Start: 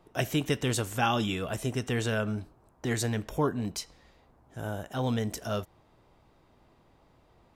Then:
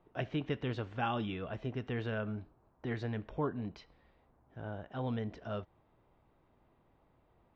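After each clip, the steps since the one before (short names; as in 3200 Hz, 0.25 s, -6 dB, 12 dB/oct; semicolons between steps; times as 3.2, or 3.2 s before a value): Bessel low-pass 2500 Hz, order 6; gain -7 dB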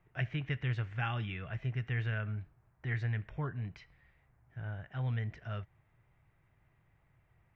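graphic EQ 125/250/500/1000/2000/4000 Hz +9/-11/-7/-6/+10/-7 dB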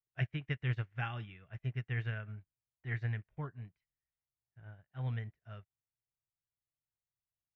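upward expander 2.5:1, over -54 dBFS; gain +2 dB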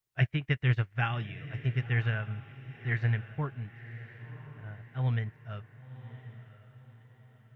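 diffused feedback echo 1.055 s, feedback 41%, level -14 dB; gain +8 dB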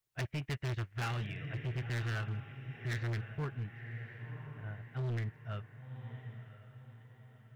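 overloaded stage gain 33.5 dB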